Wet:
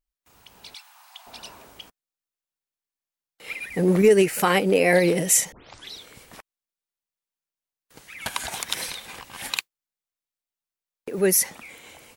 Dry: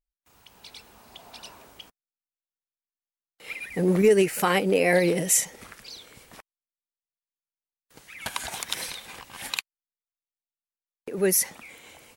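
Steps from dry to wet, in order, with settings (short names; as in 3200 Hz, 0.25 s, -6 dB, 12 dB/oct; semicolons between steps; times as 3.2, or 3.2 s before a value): 0.74–1.27 steep high-pass 760 Hz 48 dB/oct; 5.52 tape start 0.45 s; 9.34–11.2 modulation noise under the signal 30 dB; gain +2.5 dB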